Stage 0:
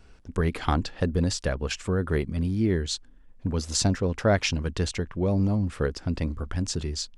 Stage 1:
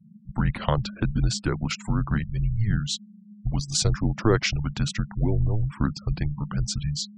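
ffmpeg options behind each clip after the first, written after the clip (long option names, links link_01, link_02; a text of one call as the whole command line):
ffmpeg -i in.wav -af "afftfilt=real='re*gte(hypot(re,im),0.01)':imag='im*gte(hypot(re,im),0.01)':win_size=1024:overlap=0.75,afreqshift=-220,volume=1.5dB" out.wav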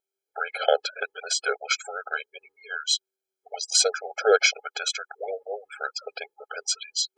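ffmpeg -i in.wav -af "afftfilt=real='re*eq(mod(floor(b*sr/1024/430),2),1)':imag='im*eq(mod(floor(b*sr/1024/430),2),1)':win_size=1024:overlap=0.75,volume=8.5dB" out.wav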